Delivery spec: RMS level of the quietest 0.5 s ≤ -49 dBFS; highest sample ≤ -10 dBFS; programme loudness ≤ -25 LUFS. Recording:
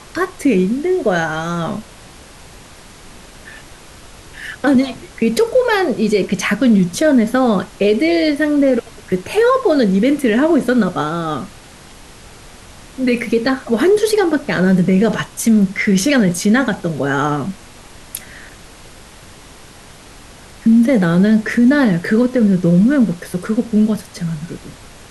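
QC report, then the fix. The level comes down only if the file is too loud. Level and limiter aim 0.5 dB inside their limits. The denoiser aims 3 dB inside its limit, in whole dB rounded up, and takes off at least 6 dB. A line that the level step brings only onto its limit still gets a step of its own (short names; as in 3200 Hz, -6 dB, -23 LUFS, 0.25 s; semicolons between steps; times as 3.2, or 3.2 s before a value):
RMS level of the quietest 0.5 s -39 dBFS: fail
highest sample -4.5 dBFS: fail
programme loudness -15.5 LUFS: fail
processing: denoiser 6 dB, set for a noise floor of -39 dBFS; gain -10 dB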